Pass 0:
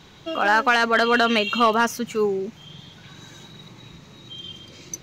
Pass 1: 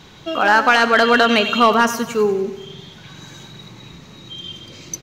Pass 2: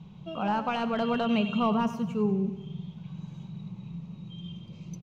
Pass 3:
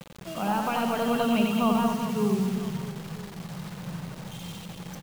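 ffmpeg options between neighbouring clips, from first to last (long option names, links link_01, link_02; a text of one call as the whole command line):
ffmpeg -i in.wav -af "aecho=1:1:94|188|282|376|470|564:0.224|0.125|0.0702|0.0393|0.022|0.0123,volume=4.5dB" out.wav
ffmpeg -i in.wav -af "firequalizer=gain_entry='entry(100,0);entry(180,14);entry(260,-8);entry(990,-6);entry(1700,-22);entry(2600,-8);entry(4100,-18);entry(14000,-24)':delay=0.05:min_phase=1,volume=-6.5dB" out.wav
ffmpeg -i in.wav -filter_complex "[0:a]acrusher=bits=6:mix=0:aa=0.000001,asplit=2[link_01][link_02];[link_02]aecho=0:1:90|216|392.4|639.4|985.1:0.631|0.398|0.251|0.158|0.1[link_03];[link_01][link_03]amix=inputs=2:normalize=0" out.wav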